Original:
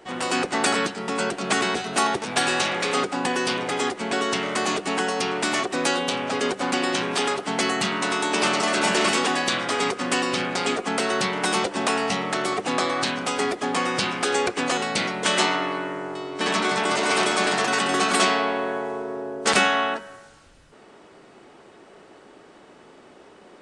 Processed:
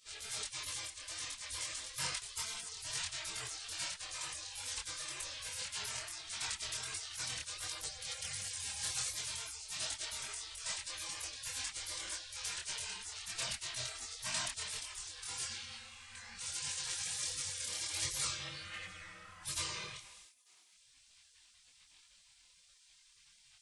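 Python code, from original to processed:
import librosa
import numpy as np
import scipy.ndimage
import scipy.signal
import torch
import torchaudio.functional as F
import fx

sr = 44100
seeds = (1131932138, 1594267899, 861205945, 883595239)

y = fx.spec_gate(x, sr, threshold_db=-25, keep='weak')
y = fx.chorus_voices(y, sr, voices=4, hz=1.4, base_ms=24, depth_ms=3.0, mix_pct=45)
y = F.gain(torch.from_numpy(y), 4.5).numpy()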